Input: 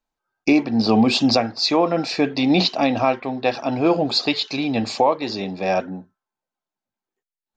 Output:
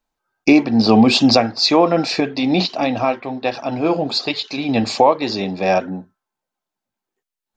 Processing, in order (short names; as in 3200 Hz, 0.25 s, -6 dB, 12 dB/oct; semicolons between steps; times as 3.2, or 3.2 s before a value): 2.2–4.69 flange 1.4 Hz, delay 1 ms, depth 4.9 ms, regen -69%; ending taper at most 400 dB/s; gain +4.5 dB